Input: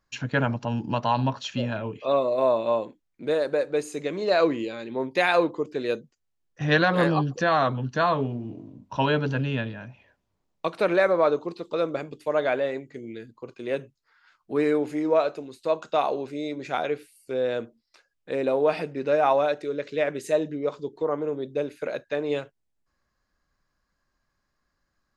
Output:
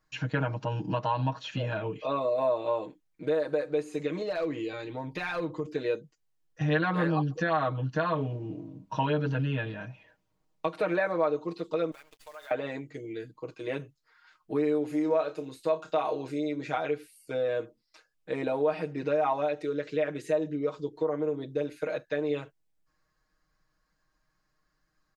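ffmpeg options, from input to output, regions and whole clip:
ffmpeg -i in.wav -filter_complex "[0:a]asettb=1/sr,asplit=3[link_01][link_02][link_03];[link_01]atrim=end=4.224[link_04];[link_02]atrim=start=4.22:end=5.66,asetpts=PTS-STARTPTS,afade=type=in:duration=0.004:curve=qsin,afade=type=out:start_time=1.436:duration=0.004:curve=qsin,asubboost=boost=7.5:cutoff=160,acompressor=threshold=-32dB:ratio=2:attack=3.2:release=140:knee=1:detection=peak,volume=23.5dB,asoftclip=hard,volume=-23.5dB[link_05];[link_03]atrim=start=5.656[link_06];[link_04][link_05]acrossfade=duration=0.004:curve1=hsin:curve2=qsin[link_07];[link_07][link_06]acrossfade=duration=0.004:curve1=qsin:curve2=hsin,asettb=1/sr,asplit=3[link_08][link_09][link_10];[link_08]atrim=end=11.914[link_11];[link_09]atrim=start=11.91:end=12.51,asetpts=PTS-STARTPTS,afade=type=in:duration=0.004:curve=qsin,afade=type=out:start_time=0.596:duration=0.004:curve=qsin,highpass=1200,acrusher=bits=8:dc=4:mix=0:aa=0.000001,acompressor=threshold=-46dB:ratio=4:attack=3.2:release=140:knee=1:detection=peak[link_12];[link_10]atrim=start=12.506[link_13];[link_11][link_12]acrossfade=duration=0.004:curve1=hsin:curve2=qsin[link_14];[link_14][link_13]acrossfade=duration=0.004:curve1=qsin:curve2=hsin,asettb=1/sr,asplit=3[link_15][link_16][link_17];[link_15]atrim=end=14.874[link_18];[link_16]atrim=start=14.87:end=16.39,asetpts=PTS-STARTPTS,afade=type=in:duration=0.004:curve=qsin,afade=type=out:start_time=1.516:duration=0.004:curve=qsin,highshelf=frequency=8100:gain=8,asplit=2[link_19][link_20];[link_20]adelay=30,volume=-11dB[link_21];[link_19][link_21]amix=inputs=2:normalize=0,atrim=end_sample=67032[link_22];[link_17]atrim=start=16.386[link_23];[link_18][link_22]acrossfade=duration=0.004:curve1=hsin:curve2=qsin[link_24];[link_24][link_23]acrossfade=duration=0.004:curve1=qsin:curve2=hsin,acrossover=split=3300[link_25][link_26];[link_26]acompressor=threshold=-50dB:ratio=4:attack=1:release=60[link_27];[link_25][link_27]amix=inputs=2:normalize=0,aecho=1:1:6.4:0.96,acompressor=threshold=-26dB:ratio=2,volume=-2.5dB" out.wav

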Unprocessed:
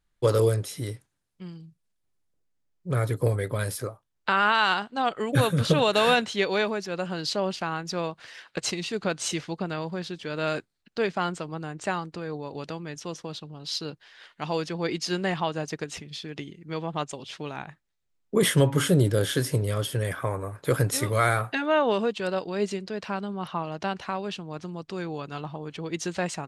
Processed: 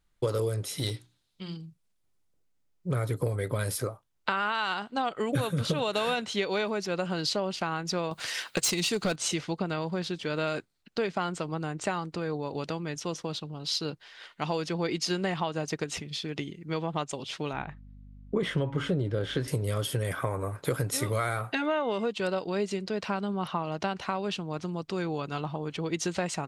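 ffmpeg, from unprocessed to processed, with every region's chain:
ffmpeg -i in.wav -filter_complex "[0:a]asettb=1/sr,asplit=3[link_01][link_02][link_03];[link_01]atrim=end=0.784[link_04];[link_02]atrim=start=0.78:end=1.57,asetpts=PTS-STARTPTS,afade=type=in:duration=0.004:curve=qsin,afade=type=out:start_time=0.786:duration=0.004:curve=qsin,equalizer=frequency=3800:width_type=o:width=0.81:gain=14,bandreject=frequency=60:width_type=h:width=6,bandreject=frequency=120:width_type=h:width=6,bandreject=frequency=180:width_type=h:width=6,bandreject=frequency=240:width_type=h:width=6,bandreject=frequency=300:width_type=h:width=6,bandreject=frequency=360:width_type=h:width=6,aeval=exprs='clip(val(0),-1,0.0376)':channel_layout=same[link_05];[link_03]atrim=start=1.566[link_06];[link_04][link_05]acrossfade=duration=0.004:curve1=hsin:curve2=qsin[link_07];[link_07][link_06]acrossfade=duration=0.004:curve1=qsin:curve2=hsin,asettb=1/sr,asplit=3[link_08][link_09][link_10];[link_08]atrim=end=8.114[link_11];[link_09]atrim=start=8.11:end=9.16,asetpts=PTS-STARTPTS,afade=type=in:duration=0.004:curve=qsin,afade=type=out:start_time=1.046:duration=0.004:curve=qsin,aemphasis=mode=production:type=50fm,acontrast=69,volume=17dB,asoftclip=hard,volume=-17dB[link_12];[link_10]atrim=start=9.156[link_13];[link_11][link_12]acrossfade=duration=0.004:curve1=hsin:curve2=qsin[link_14];[link_14][link_13]acrossfade=duration=0.004:curve1=qsin:curve2=hsin,asettb=1/sr,asplit=3[link_15][link_16][link_17];[link_15]atrim=end=17.534[link_18];[link_16]atrim=start=17.53:end=19.48,asetpts=PTS-STARTPTS,afade=type=in:duration=0.004:curve=qsin,afade=type=out:start_time=1.946:duration=0.004:curve=qsin,lowpass=3200,aeval=exprs='val(0)+0.00316*(sin(2*PI*50*n/s)+sin(2*PI*2*50*n/s)/2+sin(2*PI*3*50*n/s)/3+sin(2*PI*4*50*n/s)/4+sin(2*PI*5*50*n/s)/5)':channel_layout=same[link_19];[link_17]atrim=start=19.476[link_20];[link_18][link_19]acrossfade=duration=0.004:curve1=hsin:curve2=qsin[link_21];[link_21][link_20]acrossfade=duration=0.004:curve1=qsin:curve2=hsin,asettb=1/sr,asplit=3[link_22][link_23][link_24];[link_22]atrim=end=21.624[link_25];[link_23]atrim=start=21.62:end=22.04,asetpts=PTS-STARTPTS,afade=type=in:duration=0.004:curve=qsin,afade=type=out:start_time=0.416:duration=0.004:curve=qsin,aeval=exprs='val(0)+0.00398*sin(2*PI*2100*n/s)':channel_layout=same,bandreject=frequency=4200:width=18[link_26];[link_24]atrim=start=22.036[link_27];[link_25][link_26]acrossfade=duration=0.004:curve1=hsin:curve2=qsin[link_28];[link_28][link_27]acrossfade=duration=0.004:curve1=qsin:curve2=hsin,bandreject=frequency=1700:width=17,acompressor=threshold=-28dB:ratio=6,volume=2.5dB" out.wav

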